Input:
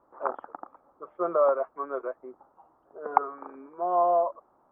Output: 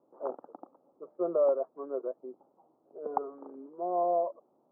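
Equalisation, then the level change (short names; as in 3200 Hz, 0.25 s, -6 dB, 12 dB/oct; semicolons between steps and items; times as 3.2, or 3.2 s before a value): Butterworth band-pass 300 Hz, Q 0.68; 0.0 dB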